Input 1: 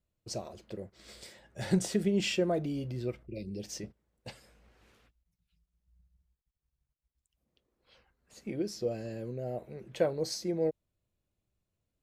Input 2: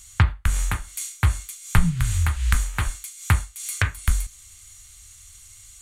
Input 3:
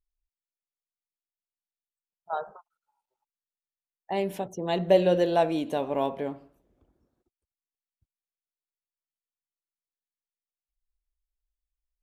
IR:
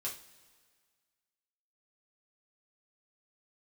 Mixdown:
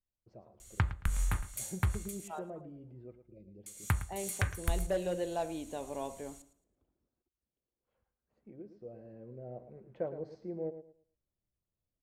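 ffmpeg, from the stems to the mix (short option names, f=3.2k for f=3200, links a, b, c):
-filter_complex "[0:a]lowpass=1.2k,volume=-8dB,afade=t=in:st=8.84:d=0.72:silence=0.446684,asplit=2[a][b];[b]volume=-11dB[c];[1:a]equalizer=f=3.3k:w=0.39:g=-6,acompressor=threshold=-20dB:ratio=6,adelay=600,volume=-6dB,asplit=3[d][e][f];[d]atrim=end=2.28,asetpts=PTS-STARTPTS,afade=t=out:st=2.276:d=0.004:c=hsin[g];[e]atrim=start=2.28:end=3.66,asetpts=PTS-STARTPTS,volume=0[h];[f]atrim=start=3.66,asetpts=PTS-STARTPTS,afade=t=in:d=0.004:c=hsin[i];[g][h][i]concat=n=3:v=0:a=1,asplit=2[j][k];[k]volume=-15.5dB[l];[2:a]asoftclip=type=hard:threshold=-14dB,volume=-12dB,asplit=2[m][n];[n]volume=-20.5dB[o];[c][l][o]amix=inputs=3:normalize=0,aecho=0:1:111|222|333|444:1|0.24|0.0576|0.0138[p];[a][j][m][p]amix=inputs=4:normalize=0"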